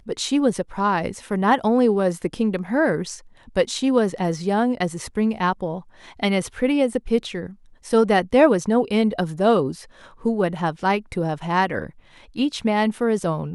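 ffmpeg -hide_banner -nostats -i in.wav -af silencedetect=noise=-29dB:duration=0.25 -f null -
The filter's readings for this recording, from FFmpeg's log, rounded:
silence_start: 3.17
silence_end: 3.56 | silence_duration: 0.39
silence_start: 5.79
silence_end: 6.20 | silence_duration: 0.41
silence_start: 7.46
silence_end: 7.86 | silence_duration: 0.40
silence_start: 9.79
silence_end: 10.25 | silence_duration: 0.46
silence_start: 11.89
silence_end: 12.36 | silence_duration: 0.47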